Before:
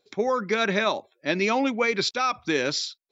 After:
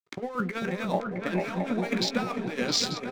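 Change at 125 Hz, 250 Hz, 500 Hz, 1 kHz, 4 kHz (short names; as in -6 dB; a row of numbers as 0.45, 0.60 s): +3.0, -1.0, -6.0, -6.5, -2.0 dB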